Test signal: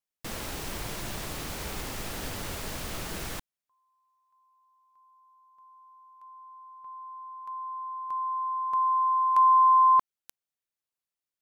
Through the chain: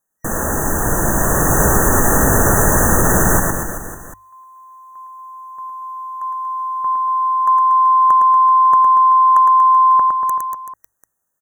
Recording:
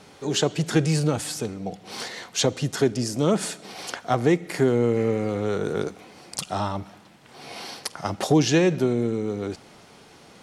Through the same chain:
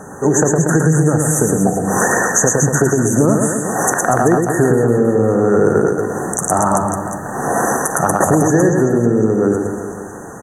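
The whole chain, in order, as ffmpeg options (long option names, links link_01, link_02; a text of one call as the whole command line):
ffmpeg -i in.wav -af "dynaudnorm=framelen=250:gausssize=13:maxgain=10dB,afftfilt=real='re*(1-between(b*sr/4096,1900,5900))':imag='im*(1-between(b*sr/4096,1900,5900))':win_size=4096:overlap=0.75,acompressor=threshold=-25dB:ratio=20:attack=14:release=718:knee=1:detection=peak,bandreject=frequency=50:width_type=h:width=6,bandreject=frequency=100:width_type=h:width=6,aecho=1:1:110|236.5|382|549.3|741.7:0.631|0.398|0.251|0.158|0.1,alimiter=level_in=17dB:limit=-1dB:release=50:level=0:latency=1,volume=-1dB" out.wav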